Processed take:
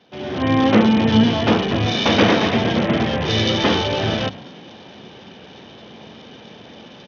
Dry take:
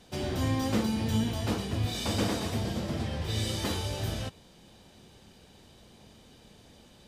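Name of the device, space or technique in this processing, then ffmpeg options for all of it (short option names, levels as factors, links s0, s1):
Bluetooth headset: -filter_complex "[0:a]highpass=f=44:w=0.5412,highpass=f=44:w=1.3066,bandreject=f=50:t=h:w=6,bandreject=f=100:t=h:w=6,bandreject=f=150:t=h:w=6,bandreject=f=200:t=h:w=6,bandreject=f=250:t=h:w=6,bandreject=f=300:t=h:w=6,bandreject=f=350:t=h:w=6,asettb=1/sr,asplit=3[s0][s1][s2];[s0]atrim=end=2.064[s3];[s1]atrim=start=2.06:end=3.03,asetpts=PTS-STARTPTS,afade=t=in:d=0.004:c=qsin,afade=t=out:st=0.966:d=0.004:c=qsin,equalizer=f=2100:t=o:w=1.1:g=3.5[s4];[s2]atrim=start=3.026[s5];[s3][s4]acrossfade=d=0.004:c1=hsin:c2=qsin[s6];[s6][s5]acrossfade=d=0.004:c1=qsin:c2=hsin,asplit=6[s7][s8][s9][s10][s11][s12];[s8]adelay=107,afreqshift=38,volume=0.0794[s13];[s9]adelay=214,afreqshift=76,volume=0.0519[s14];[s10]adelay=321,afreqshift=114,volume=0.0335[s15];[s11]adelay=428,afreqshift=152,volume=0.0219[s16];[s12]adelay=535,afreqshift=190,volume=0.0141[s17];[s7][s13][s14][s15][s16][s17]amix=inputs=6:normalize=0,highpass=160,dynaudnorm=f=170:g=5:m=5.01,aresample=8000,aresample=44100,volume=1.41" -ar 48000 -c:a sbc -b:a 64k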